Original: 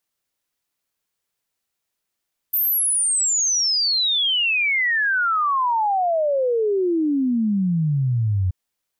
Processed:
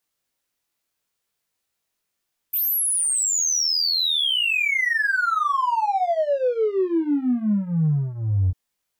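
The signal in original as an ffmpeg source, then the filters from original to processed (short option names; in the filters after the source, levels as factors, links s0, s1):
-f lavfi -i "aevalsrc='0.141*clip(min(t,5.98-t)/0.01,0,1)*sin(2*PI*14000*5.98/log(89/14000)*(exp(log(89/14000)*t/5.98)-1))':d=5.98:s=44100"
-filter_complex "[0:a]asplit=2[s0][s1];[s1]asoftclip=type=tanh:threshold=0.0282,volume=0.631[s2];[s0][s2]amix=inputs=2:normalize=0,flanger=delay=19:depth=2.2:speed=0.65"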